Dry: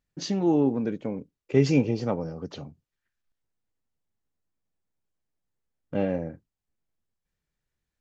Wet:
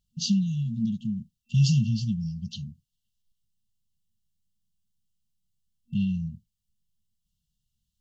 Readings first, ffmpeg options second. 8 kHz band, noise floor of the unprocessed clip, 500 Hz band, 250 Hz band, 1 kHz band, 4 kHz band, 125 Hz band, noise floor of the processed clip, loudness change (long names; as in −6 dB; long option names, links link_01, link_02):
can't be measured, below −85 dBFS, below −40 dB, −1.5 dB, below −40 dB, +5.5 dB, +5.5 dB, −82 dBFS, −1.0 dB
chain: -af "afftfilt=real='re*(1-between(b*sr/4096,230,2700))':imag='im*(1-between(b*sr/4096,230,2700))':win_size=4096:overlap=0.75,volume=5.5dB"